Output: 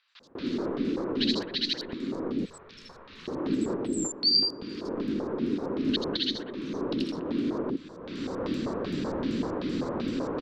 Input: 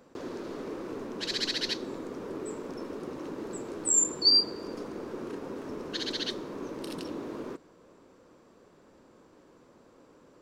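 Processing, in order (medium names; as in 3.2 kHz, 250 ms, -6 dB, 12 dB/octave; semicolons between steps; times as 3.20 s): recorder AGC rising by 28 dB/s; 2.25–3.08 s: amplifier tone stack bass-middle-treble 10-0-10; LFO low-pass square 2.6 Hz 260–4000 Hz; treble shelf 12 kHz +10.5 dB; three bands offset in time mids, highs, lows 80/200 ms, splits 1.6/5 kHz; trim -3 dB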